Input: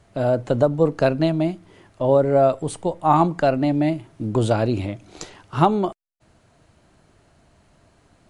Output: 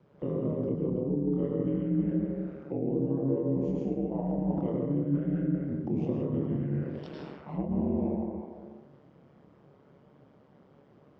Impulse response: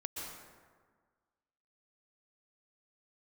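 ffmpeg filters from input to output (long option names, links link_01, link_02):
-filter_complex "[1:a]atrim=start_sample=2205,asetrate=70560,aresample=44100[link_01];[0:a][link_01]afir=irnorm=-1:irlink=0,flanger=delay=18:depth=3.3:speed=0.37,asplit=2[link_02][link_03];[link_03]aeval=exprs='clip(val(0),-1,0.106)':channel_layout=same,volume=-10dB[link_04];[link_02][link_04]amix=inputs=2:normalize=0,acrossover=split=360[link_05][link_06];[link_06]acompressor=threshold=-42dB:ratio=3[link_07];[link_05][link_07]amix=inputs=2:normalize=0,aeval=exprs='val(0)*sin(2*PI*94*n/s)':channel_layout=same,areverse,acompressor=threshold=-32dB:ratio=6,areverse,highpass=190,lowpass=5300,asetrate=32667,aresample=44100,tiltshelf=frequency=1200:gain=6.5,volume=3.5dB"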